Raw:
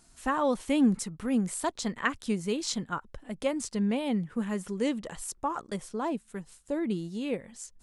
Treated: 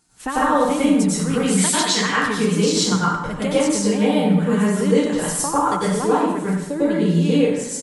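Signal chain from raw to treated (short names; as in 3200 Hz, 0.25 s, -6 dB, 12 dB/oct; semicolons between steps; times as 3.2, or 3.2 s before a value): 1.33–2.01 weighting filter D; gate -50 dBFS, range -11 dB; HPF 71 Hz 6 dB/oct; notch 650 Hz, Q 12; comb 6.6 ms, depth 38%; compressor, threshold -31 dBFS, peak gain reduction 11.5 dB; plate-style reverb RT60 0.98 s, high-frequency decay 0.7×, pre-delay 85 ms, DRR -9 dB; gain +8 dB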